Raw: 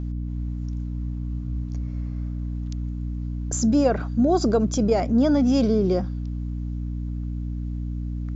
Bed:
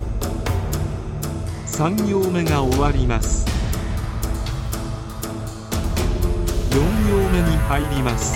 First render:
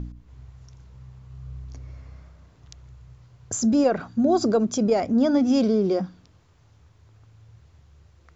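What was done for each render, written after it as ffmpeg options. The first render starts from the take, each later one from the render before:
ffmpeg -i in.wav -af "bandreject=frequency=60:width_type=h:width=4,bandreject=frequency=120:width_type=h:width=4,bandreject=frequency=180:width_type=h:width=4,bandreject=frequency=240:width_type=h:width=4,bandreject=frequency=300:width_type=h:width=4" out.wav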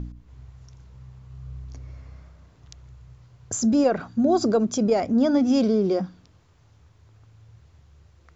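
ffmpeg -i in.wav -af anull out.wav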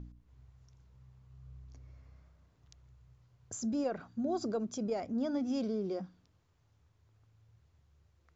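ffmpeg -i in.wav -af "volume=-14dB" out.wav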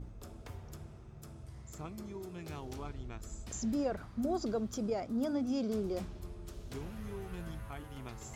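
ffmpeg -i in.wav -i bed.wav -filter_complex "[1:a]volume=-25.5dB[link_01];[0:a][link_01]amix=inputs=2:normalize=0" out.wav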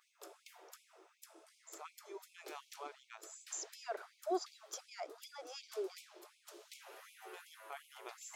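ffmpeg -i in.wav -af "afftfilt=real='re*gte(b*sr/1024,300*pow(2200/300,0.5+0.5*sin(2*PI*2.7*pts/sr)))':imag='im*gte(b*sr/1024,300*pow(2200/300,0.5+0.5*sin(2*PI*2.7*pts/sr)))':win_size=1024:overlap=0.75" out.wav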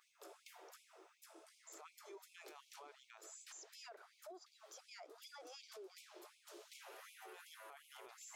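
ffmpeg -i in.wav -af "acompressor=threshold=-49dB:ratio=12,alimiter=level_in=23dB:limit=-24dB:level=0:latency=1:release=13,volume=-23dB" out.wav

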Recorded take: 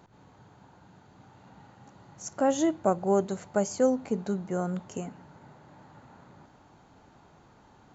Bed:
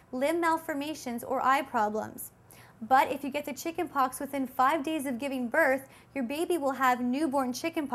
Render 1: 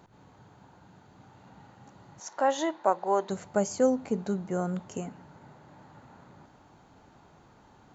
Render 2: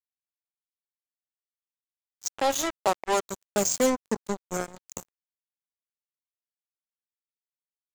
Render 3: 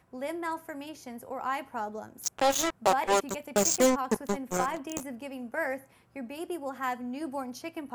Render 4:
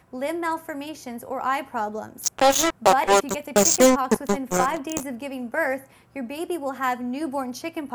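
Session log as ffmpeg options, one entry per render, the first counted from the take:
ffmpeg -i in.wav -filter_complex "[0:a]asettb=1/sr,asplit=3[link_01][link_02][link_03];[link_01]atrim=end=2.204[link_04];[link_02]atrim=start=2.2:end=3.3,asetpts=PTS-STARTPTS,afade=type=in:duration=0.004:curve=qsin,afade=type=out:start_time=1.096:duration=0.004:curve=qsin,highpass=450,equalizer=frequency=950:width_type=q:width=4:gain=9,equalizer=frequency=1800:width_type=q:width=4:gain=6,equalizer=frequency=3800:width_type=q:width=4:gain=6,lowpass=frequency=6300:width=0.5412,lowpass=frequency=6300:width=1.3066[link_05];[link_03]atrim=start=3.296[link_06];[link_04][link_05]acrossfade=duration=0.004:curve1=hsin:curve2=qsin[link_07];[link_07][link_06]acrossfade=duration=0.004:curve1=qsin:curve2=hsin" out.wav
ffmpeg -i in.wav -filter_complex "[0:a]acrossover=split=170|470|2700[link_01][link_02][link_03][link_04];[link_04]crystalizer=i=4:c=0[link_05];[link_01][link_02][link_03][link_05]amix=inputs=4:normalize=0,acrusher=bits=3:mix=0:aa=0.5" out.wav
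ffmpeg -i in.wav -i bed.wav -filter_complex "[1:a]volume=-7dB[link_01];[0:a][link_01]amix=inputs=2:normalize=0" out.wav
ffmpeg -i in.wav -af "volume=7.5dB" out.wav

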